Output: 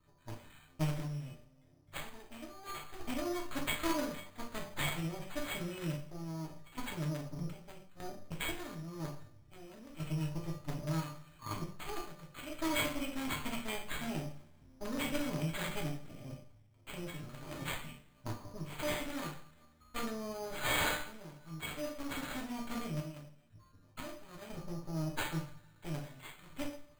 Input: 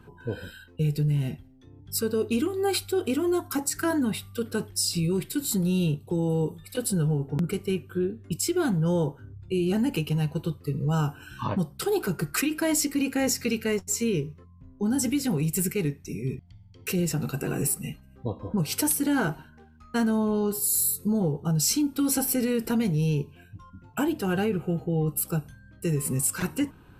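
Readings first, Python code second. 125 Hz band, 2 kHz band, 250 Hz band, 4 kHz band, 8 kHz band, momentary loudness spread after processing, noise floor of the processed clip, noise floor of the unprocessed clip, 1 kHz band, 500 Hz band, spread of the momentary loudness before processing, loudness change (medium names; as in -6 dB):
-13.5 dB, -5.0 dB, -15.0 dB, -7.5 dB, -18.5 dB, 15 LU, -64 dBFS, -52 dBFS, -6.5 dB, -14.5 dB, 8 LU, -13.0 dB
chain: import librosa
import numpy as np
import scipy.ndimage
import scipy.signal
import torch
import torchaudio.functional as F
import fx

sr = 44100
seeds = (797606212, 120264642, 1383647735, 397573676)

p1 = fx.lower_of_two(x, sr, delay_ms=0.89)
p2 = fx.comb_fb(p1, sr, f0_hz=600.0, decay_s=0.31, harmonics='all', damping=0.0, mix_pct=90)
p3 = fx.quant_dither(p2, sr, seeds[0], bits=6, dither='none')
p4 = p2 + F.gain(torch.from_numpy(p3), -6.5).numpy()
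p5 = fx.tremolo_random(p4, sr, seeds[1], hz=2.0, depth_pct=85)
p6 = fx.rev_double_slope(p5, sr, seeds[2], early_s=0.48, late_s=2.3, knee_db=-27, drr_db=-2.0)
p7 = np.repeat(p6[::8], 8)[:len(p6)]
y = F.gain(torch.from_numpy(p7), 3.5).numpy()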